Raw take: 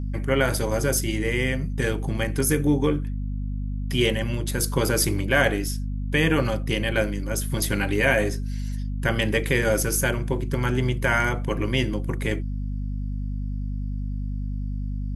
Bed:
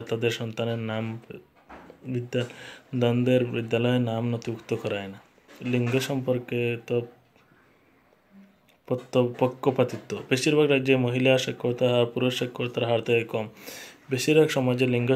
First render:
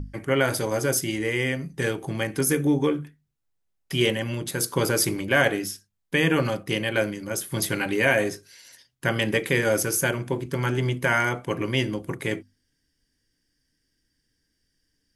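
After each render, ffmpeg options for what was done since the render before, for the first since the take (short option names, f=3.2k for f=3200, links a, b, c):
-af "bandreject=f=50:t=h:w=6,bandreject=f=100:t=h:w=6,bandreject=f=150:t=h:w=6,bandreject=f=200:t=h:w=6,bandreject=f=250:t=h:w=6"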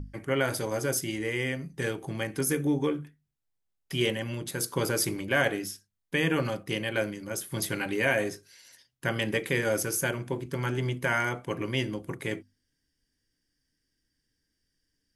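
-af "volume=-5dB"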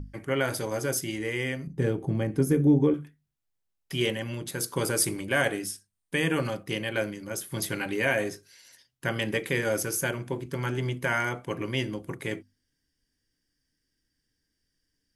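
-filter_complex "[0:a]asettb=1/sr,asplit=3[a][b][c];[a]atrim=end=1.674[d];[b]atrim=start=1.67:end=2.94,asetpts=PTS-STARTPTS,afade=t=in:d=0.004:c=qsin,afade=t=out:st=1.266:d=0.004:c=qsin,tiltshelf=f=750:g=9[e];[c]atrim=start=2.936[f];[d][e]acrossfade=d=0.004:c1=hsin:c2=qsin[g];[g][f]acrossfade=d=0.004:c1=qsin:c2=hsin,asettb=1/sr,asplit=3[h][i][j];[h]atrim=end=4.764[k];[i]atrim=start=4.76:end=6.48,asetpts=PTS-STARTPTS,afade=t=in:d=0.004:c=qsin,afade=t=out:st=1.716:d=0.004:c=qsin,equalizer=f=8.9k:w=3.8:g=11[l];[j]atrim=start=6.476[m];[k][l]acrossfade=d=0.004:c1=hsin:c2=qsin[n];[n][m]acrossfade=d=0.004:c1=qsin:c2=hsin"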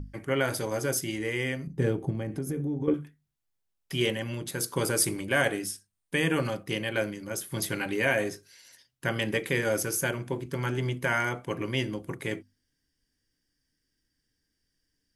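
-filter_complex "[0:a]asettb=1/sr,asplit=3[a][b][c];[a]atrim=end=2.104[d];[b]atrim=start=2.1:end=2.88,asetpts=PTS-STARTPTS,afade=t=in:d=0.004:c=qsin,afade=t=out:st=0.776:d=0.004:c=qsin,acompressor=threshold=-28dB:ratio=6:attack=3.2:release=140:knee=1:detection=peak[e];[c]atrim=start=2.876[f];[d][e]acrossfade=d=0.004:c1=hsin:c2=qsin[g];[g][f]acrossfade=d=0.004:c1=qsin:c2=hsin"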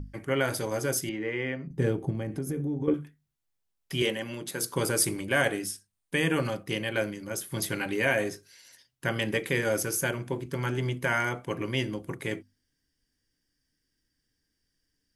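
-filter_complex "[0:a]asettb=1/sr,asplit=3[a][b][c];[a]atrim=end=1.094[d];[b]atrim=start=1.09:end=1.71,asetpts=PTS-STARTPTS,afade=t=in:d=0.004:c=qsin,afade=t=out:st=0.616:d=0.004:c=qsin,highpass=140,lowpass=2.4k[e];[c]atrim=start=1.706[f];[d][e]acrossfade=d=0.004:c1=hsin:c2=qsin[g];[g][f]acrossfade=d=0.004:c1=qsin:c2=hsin,asettb=1/sr,asplit=3[h][i][j];[h]atrim=end=4.024[k];[i]atrim=start=4.02:end=4.63,asetpts=PTS-STARTPTS,afade=t=in:d=0.004:c=qsin,afade=t=out:st=0.606:d=0.004:c=qsin,highpass=180[l];[j]atrim=start=4.626[m];[k][l]acrossfade=d=0.004:c1=hsin:c2=qsin[n];[n][m]acrossfade=d=0.004:c1=qsin:c2=hsin"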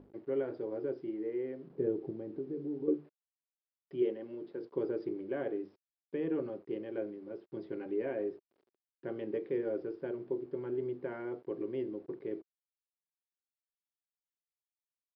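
-af "aresample=11025,acrusher=bits=7:mix=0:aa=0.000001,aresample=44100,bandpass=f=380:t=q:w=3.5:csg=0"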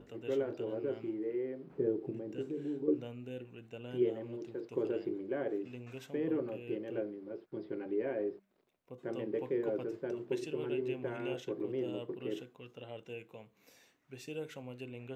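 -filter_complex "[1:a]volume=-22.5dB[a];[0:a][a]amix=inputs=2:normalize=0"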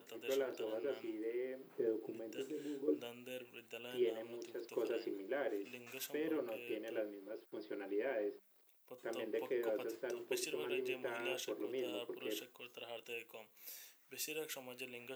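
-af "highpass=f=230:p=1,aemphasis=mode=production:type=riaa"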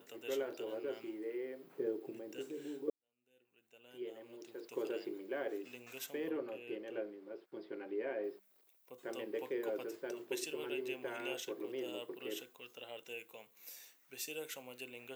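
-filter_complex "[0:a]asettb=1/sr,asplit=3[a][b][c];[a]atrim=end=6.294[d];[b]atrim=start=6.29:end=8.24,asetpts=PTS-STARTPTS,afade=t=in:d=0.004:c=qsin,afade=t=out:st=1.946:d=0.004:c=qsin,aemphasis=mode=reproduction:type=50kf[e];[c]atrim=start=8.236[f];[d][e]acrossfade=d=0.004:c1=hsin:c2=qsin[g];[g][f]acrossfade=d=0.004:c1=qsin:c2=hsin,asplit=2[h][i];[h]atrim=end=2.9,asetpts=PTS-STARTPTS,afade=t=out:st=2.896:d=0.004:c=hsin[j];[i]atrim=start=2.9,asetpts=PTS-STARTPTS,afade=t=in:d=1.86:c=qua[k];[j][k]concat=n=2:v=0:a=1"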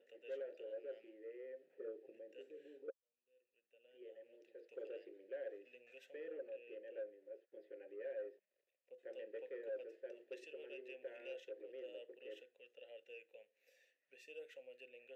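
-filter_complex "[0:a]asplit=3[a][b][c];[a]bandpass=f=530:t=q:w=8,volume=0dB[d];[b]bandpass=f=1.84k:t=q:w=8,volume=-6dB[e];[c]bandpass=f=2.48k:t=q:w=8,volume=-9dB[f];[d][e][f]amix=inputs=3:normalize=0,asoftclip=type=tanh:threshold=-37.5dB"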